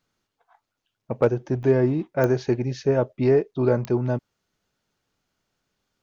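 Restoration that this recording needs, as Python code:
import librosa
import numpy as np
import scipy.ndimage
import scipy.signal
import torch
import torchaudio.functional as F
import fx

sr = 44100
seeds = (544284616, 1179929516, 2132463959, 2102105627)

y = fx.fix_declip(x, sr, threshold_db=-8.5)
y = fx.fix_declick_ar(y, sr, threshold=10.0)
y = fx.fix_interpolate(y, sr, at_s=(1.63,), length_ms=1.9)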